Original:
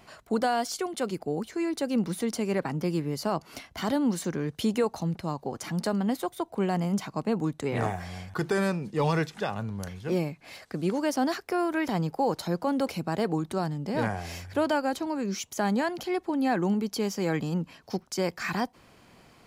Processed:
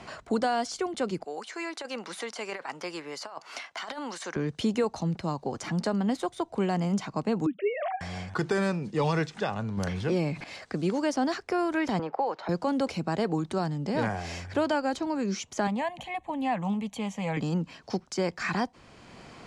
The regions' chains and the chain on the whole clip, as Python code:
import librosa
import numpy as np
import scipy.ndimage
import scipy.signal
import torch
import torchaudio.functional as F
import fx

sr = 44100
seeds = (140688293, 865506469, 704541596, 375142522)

y = fx.chain(x, sr, fx.highpass(hz=840.0, slope=12),
    fx.over_compress(threshold_db=-38.0, ratio=-0.5), at=(1.24, 4.36))
y = fx.chain(y, sr, fx.sine_speech(),
    fx.peak_eq(hz=1300.0, db=-6.0, octaves=0.83), at=(7.46, 8.01))
y = fx.chain(y, sr, fx.peak_eq(hz=6800.0, db=-4.0, octaves=0.29),
    fx.env_flatten(amount_pct=50), at=(9.77, 10.44))
y = fx.chain(y, sr, fx.bandpass_edges(low_hz=550.0, high_hz=2200.0),
    fx.band_squash(depth_pct=70), at=(11.99, 12.49))
y = fx.chain(y, sr, fx.fixed_phaser(hz=1400.0, stages=6),
    fx.doppler_dist(depth_ms=0.15), at=(15.67, 17.37))
y = scipy.signal.sosfilt(scipy.signal.butter(4, 8400.0, 'lowpass', fs=sr, output='sos'), y)
y = fx.band_squash(y, sr, depth_pct=40)